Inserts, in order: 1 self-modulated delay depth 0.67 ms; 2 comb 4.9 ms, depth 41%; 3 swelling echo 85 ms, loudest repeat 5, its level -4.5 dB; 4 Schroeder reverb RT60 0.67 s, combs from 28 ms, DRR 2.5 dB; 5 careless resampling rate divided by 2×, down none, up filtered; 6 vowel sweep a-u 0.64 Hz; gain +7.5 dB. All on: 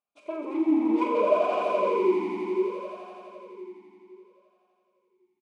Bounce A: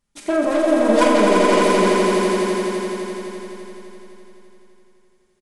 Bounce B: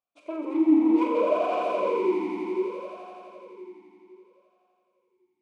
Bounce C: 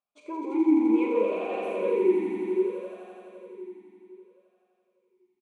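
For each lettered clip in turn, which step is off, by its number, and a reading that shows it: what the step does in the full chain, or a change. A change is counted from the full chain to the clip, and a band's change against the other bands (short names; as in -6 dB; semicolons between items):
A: 6, 4 kHz band +10.5 dB; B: 2, 250 Hz band +4.0 dB; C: 1, crest factor change -2.0 dB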